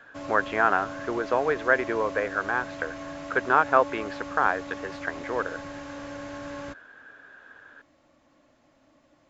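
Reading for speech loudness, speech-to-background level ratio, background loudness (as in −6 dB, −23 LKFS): −26.5 LKFS, 11.5 dB, −38.0 LKFS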